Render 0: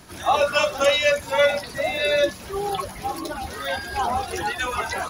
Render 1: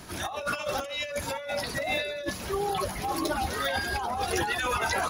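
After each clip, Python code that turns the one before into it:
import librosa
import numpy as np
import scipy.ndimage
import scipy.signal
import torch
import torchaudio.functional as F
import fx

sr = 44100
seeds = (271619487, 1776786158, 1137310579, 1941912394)

y = fx.over_compress(x, sr, threshold_db=-28.0, ratio=-1.0)
y = y * librosa.db_to_amplitude(-2.5)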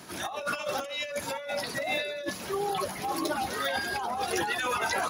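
y = scipy.signal.sosfilt(scipy.signal.butter(2, 150.0, 'highpass', fs=sr, output='sos'), x)
y = y * librosa.db_to_amplitude(-1.0)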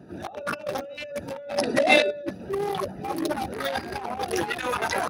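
y = fx.wiener(x, sr, points=41)
y = fx.spec_box(y, sr, start_s=1.58, length_s=0.53, low_hz=210.0, high_hz=11000.0, gain_db=11)
y = fx.notch(y, sr, hz=7000.0, q=11.0)
y = y * librosa.db_to_amplitude(5.5)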